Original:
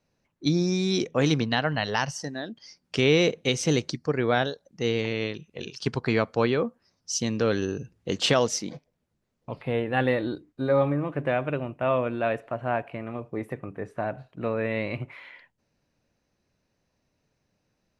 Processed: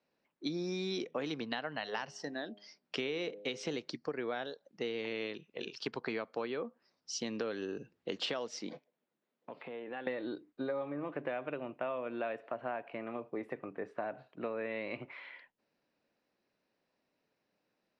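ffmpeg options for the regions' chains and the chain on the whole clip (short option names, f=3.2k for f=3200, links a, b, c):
-filter_complex "[0:a]asettb=1/sr,asplit=3[a][b][c];[a]atrim=end=1.774[d];[b]atrim=start=1.77:end=3.76,asetpts=PTS-STARTPTS,afade=t=in:d=0.004:c=qsin,afade=t=out:st=1.986:d=0.004:c=qsin,bandreject=f=4.6k:w=27,bandreject=f=102.4:t=h:w=4,bandreject=f=204.8:t=h:w=4,bandreject=f=307.2:t=h:w=4,bandreject=f=409.6:t=h:w=4,bandreject=f=512:t=h:w=4,bandreject=f=614.4:t=h:w=4,bandreject=f=716.8:t=h:w=4,bandreject=f=819.2:t=h:w=4[e];[c]atrim=start=3.756[f];[d][e]acrossfade=d=0.004:c1=hsin:c2=qsin[g];[g][f]acrossfade=d=0.004:c1=qsin:c2=hsin,asettb=1/sr,asplit=3[h][i][j];[h]atrim=end=8.734[k];[i]atrim=start=8.73:end=10.07,asetpts=PTS-STARTPTS,afade=t=in:d=0.004:c=qsin,afade=t=out:st=1.336:d=0.004:c=qsin,acompressor=threshold=-33dB:ratio=10:attack=3.2:release=140:knee=1:detection=peak,highpass=160,equalizer=f=5k:w=4.1:g=-6[l];[j]atrim=start=10.066[m];[k][l]acrossfade=d=0.004:c1=hsin:c2=qsin[n];[n][m]acrossfade=d=0.004:c1=qsin:c2=hsin,acrossover=split=210 5700:gain=0.0891 1 0.0708[o][p][q];[o][p][q]amix=inputs=3:normalize=0,bandreject=f=6.2k:w=13,acompressor=threshold=-30dB:ratio=10,volume=-3.5dB"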